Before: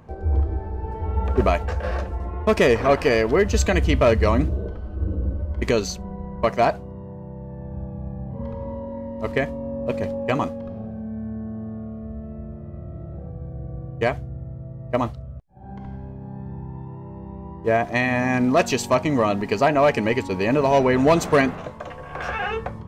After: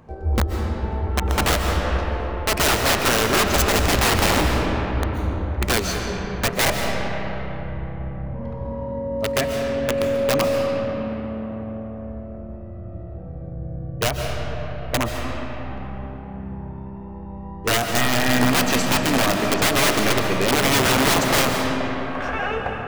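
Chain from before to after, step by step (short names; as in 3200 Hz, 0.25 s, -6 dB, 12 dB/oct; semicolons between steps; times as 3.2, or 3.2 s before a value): notches 50/100/150/200 Hz; wrapped overs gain 14 dB; on a send: reverb RT60 4.4 s, pre-delay 98 ms, DRR 2 dB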